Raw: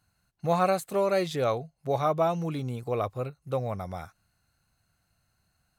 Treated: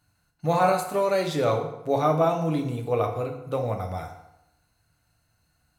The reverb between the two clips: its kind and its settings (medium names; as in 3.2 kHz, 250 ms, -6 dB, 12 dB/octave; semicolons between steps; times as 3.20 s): FDN reverb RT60 0.87 s, low-frequency decay 0.95×, high-frequency decay 0.75×, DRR 2 dB; trim +1.5 dB